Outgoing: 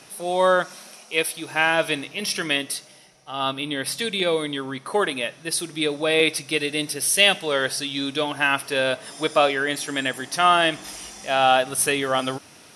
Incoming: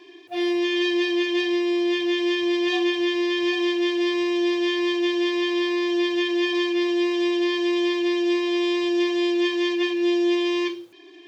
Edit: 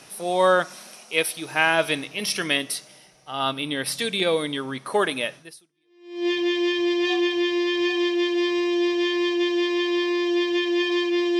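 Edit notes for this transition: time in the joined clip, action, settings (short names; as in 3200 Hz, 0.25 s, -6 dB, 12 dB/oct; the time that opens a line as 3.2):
outgoing
5.81 switch to incoming from 1.44 s, crossfade 0.90 s exponential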